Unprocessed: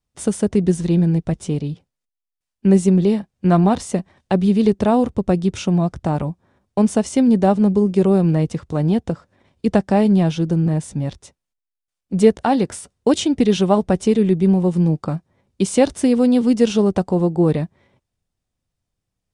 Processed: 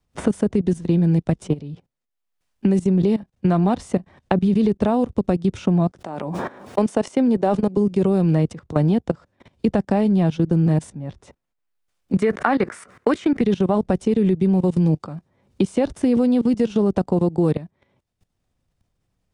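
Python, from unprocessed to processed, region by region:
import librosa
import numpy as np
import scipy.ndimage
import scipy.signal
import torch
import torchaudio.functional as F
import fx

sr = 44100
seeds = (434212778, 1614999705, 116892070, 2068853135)

y = fx.chain(x, sr, fx.highpass(hz=300.0, slope=12),
    fx.sustainer(db_per_s=49.0), at=(5.91, 7.77))
y = fx.chain(y, sr, fx.highpass(hz=240.0, slope=12),
    fx.band_shelf(hz=1600.0, db=10.5, octaves=1.3),
    fx.sustainer(db_per_s=140.0), at=(12.17, 13.41))
y = fx.level_steps(y, sr, step_db=19)
y = fx.high_shelf(y, sr, hz=3500.0, db=-7.5)
y = fx.band_squash(y, sr, depth_pct=70)
y = y * 10.0 ** (2.5 / 20.0)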